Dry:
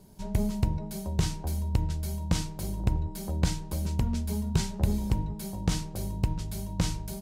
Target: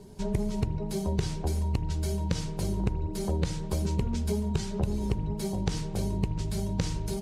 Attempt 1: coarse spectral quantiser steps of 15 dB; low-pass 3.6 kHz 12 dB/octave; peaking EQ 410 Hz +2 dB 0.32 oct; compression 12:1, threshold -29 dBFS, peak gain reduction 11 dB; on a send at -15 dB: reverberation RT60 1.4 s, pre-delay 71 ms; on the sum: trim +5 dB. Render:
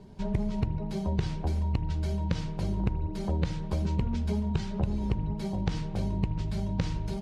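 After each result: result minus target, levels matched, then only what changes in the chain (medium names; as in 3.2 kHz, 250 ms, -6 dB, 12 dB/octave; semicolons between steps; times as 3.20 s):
8 kHz band -11.0 dB; 500 Hz band -3.5 dB
change: low-pass 9 kHz 12 dB/octave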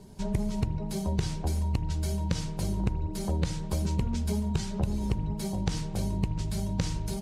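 500 Hz band -3.5 dB
change: peaking EQ 410 Hz +8.5 dB 0.32 oct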